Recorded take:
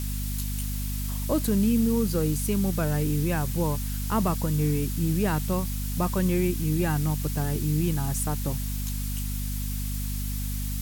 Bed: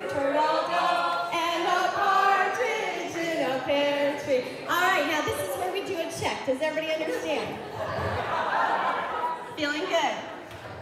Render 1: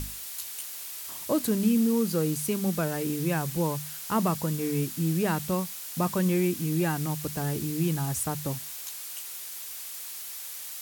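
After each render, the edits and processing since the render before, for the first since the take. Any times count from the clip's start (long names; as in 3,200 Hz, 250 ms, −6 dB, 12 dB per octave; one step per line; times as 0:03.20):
mains-hum notches 50/100/150/200/250 Hz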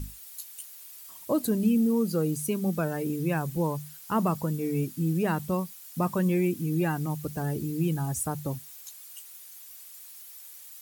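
broadband denoise 12 dB, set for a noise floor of −39 dBFS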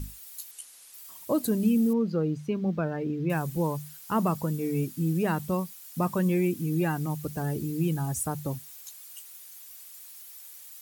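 0:00.51–0:00.94: Butterworth low-pass 12,000 Hz 96 dB per octave
0:01.93–0:03.30: high-frequency loss of the air 230 metres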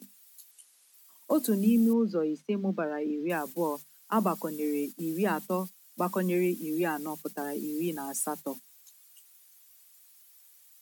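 noise gate −34 dBFS, range −11 dB
Butterworth high-pass 190 Hz 72 dB per octave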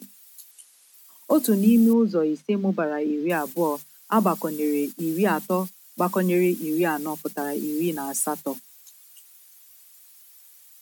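level +6.5 dB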